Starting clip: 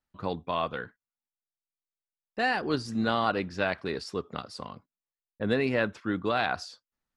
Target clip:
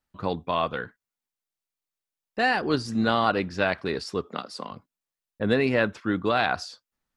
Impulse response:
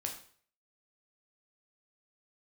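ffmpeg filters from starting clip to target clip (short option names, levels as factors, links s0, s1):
-filter_complex "[0:a]asettb=1/sr,asplit=3[s0][s1][s2];[s0]atrim=end=4.274[s3];[s1]atrim=start=4.27:end=4.71,asetpts=PTS-STARTPTS,afade=t=in:d=0.004:c=qsin,afade=t=out:st=0.436:d=0.004:c=qsin,highpass=f=180:w=0.5412,highpass=f=180:w=1.3066[s4];[s2]atrim=start=4.706[s5];[s3][s4]acrossfade=d=0.004:c1=hsin:c2=qsin[s6];[s6][s5]acrossfade=d=0.004:c1=qsin:c2=hsin,volume=1.58"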